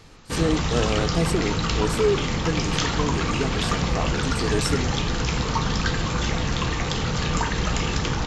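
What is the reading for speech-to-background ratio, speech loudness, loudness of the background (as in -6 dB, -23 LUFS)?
-3.5 dB, -28.0 LUFS, -24.5 LUFS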